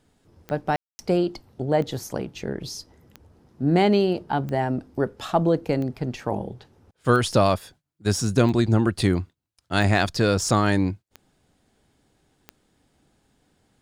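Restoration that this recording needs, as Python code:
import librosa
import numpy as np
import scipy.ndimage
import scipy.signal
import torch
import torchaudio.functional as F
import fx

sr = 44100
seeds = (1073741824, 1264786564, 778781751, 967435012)

y = fx.fix_declick_ar(x, sr, threshold=10.0)
y = fx.fix_ambience(y, sr, seeds[0], print_start_s=9.22, print_end_s=9.72, start_s=0.76, end_s=0.99)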